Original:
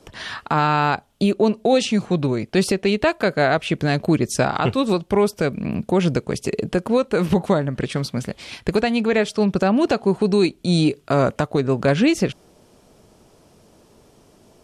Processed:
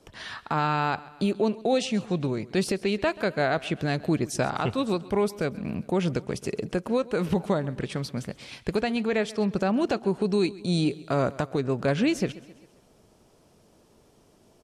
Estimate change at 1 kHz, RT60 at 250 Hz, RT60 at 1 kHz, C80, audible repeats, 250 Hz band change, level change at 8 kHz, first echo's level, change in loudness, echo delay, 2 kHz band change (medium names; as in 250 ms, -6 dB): -7.0 dB, no reverb, no reverb, no reverb, 3, -7.0 dB, -7.0 dB, -20.0 dB, -7.0 dB, 133 ms, -7.0 dB